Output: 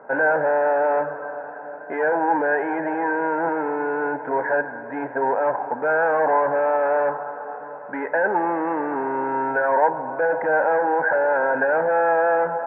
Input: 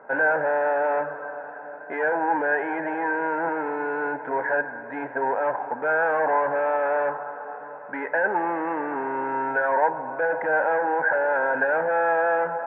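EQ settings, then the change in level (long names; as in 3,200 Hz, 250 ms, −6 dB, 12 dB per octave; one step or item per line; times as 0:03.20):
high-shelf EQ 2,200 Hz −12 dB
+4.5 dB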